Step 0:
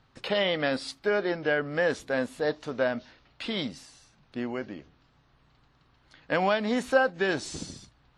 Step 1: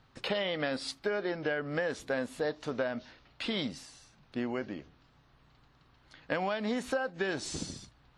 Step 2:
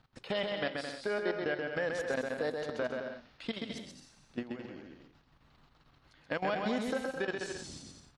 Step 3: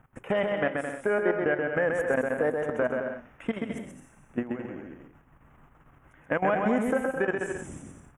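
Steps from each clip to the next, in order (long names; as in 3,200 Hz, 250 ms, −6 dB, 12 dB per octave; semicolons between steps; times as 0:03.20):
downward compressor 10 to 1, threshold −28 dBFS, peak gain reduction 12.5 dB
output level in coarse steps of 16 dB; bouncing-ball delay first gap 130 ms, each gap 0.65×, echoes 5
Butterworth band-reject 4,400 Hz, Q 0.7; level +8 dB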